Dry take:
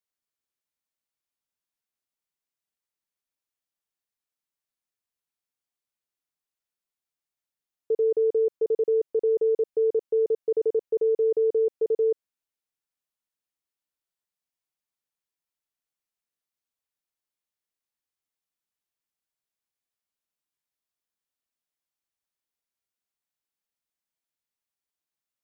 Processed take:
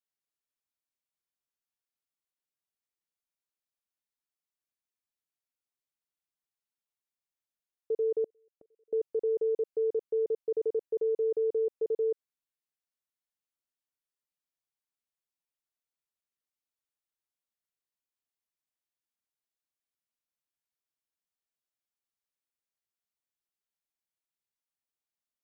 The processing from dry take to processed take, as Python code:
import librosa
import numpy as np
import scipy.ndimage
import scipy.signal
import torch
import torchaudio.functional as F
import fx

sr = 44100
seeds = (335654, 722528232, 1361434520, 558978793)

y = fx.gate_flip(x, sr, shuts_db=-27.0, range_db=-39, at=(8.24, 8.93))
y = y * 10.0 ** (-6.0 / 20.0)